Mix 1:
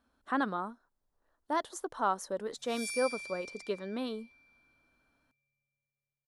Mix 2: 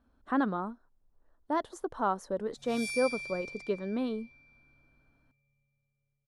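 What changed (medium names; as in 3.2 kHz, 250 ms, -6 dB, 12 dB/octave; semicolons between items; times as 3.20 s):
background +6.5 dB; master: add tilt EQ -2.5 dB/octave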